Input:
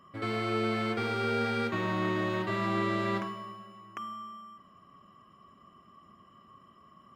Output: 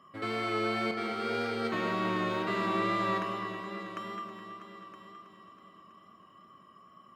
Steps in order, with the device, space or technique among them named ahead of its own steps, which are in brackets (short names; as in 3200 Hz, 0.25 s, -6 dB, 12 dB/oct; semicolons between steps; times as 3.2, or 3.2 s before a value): 0.91–1.65 expander -26 dBFS; HPF 220 Hz 6 dB/oct; darkening echo 0.21 s, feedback 61%, low-pass 4200 Hz, level -8.5 dB; multi-head tape echo (multi-head echo 0.323 s, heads all three, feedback 40%, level -15 dB; wow and flutter 23 cents)